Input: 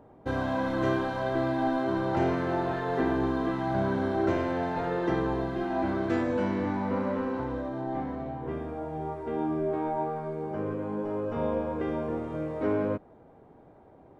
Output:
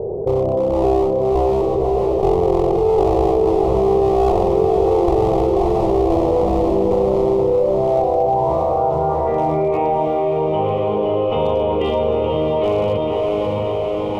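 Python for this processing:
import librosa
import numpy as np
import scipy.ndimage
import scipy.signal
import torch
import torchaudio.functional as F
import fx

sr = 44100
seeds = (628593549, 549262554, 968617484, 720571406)

p1 = fx.dynamic_eq(x, sr, hz=300.0, q=1.6, threshold_db=-40.0, ratio=4.0, max_db=6)
p2 = fx.overflow_wrap(p1, sr, gain_db=26.5, at=(1.61, 2.23))
p3 = fx.filter_sweep_lowpass(p2, sr, from_hz=420.0, to_hz=3000.0, start_s=7.42, end_s=10.01, q=6.8)
p4 = fx.clip_asym(p3, sr, top_db=-19.5, bottom_db=-6.0)
p5 = fx.fixed_phaser(p4, sr, hz=660.0, stages=4)
p6 = p5 + fx.echo_diffused(p5, sr, ms=595, feedback_pct=52, wet_db=-5.0, dry=0)
p7 = fx.env_flatten(p6, sr, amount_pct=70)
y = p7 * 10.0 ** (3.5 / 20.0)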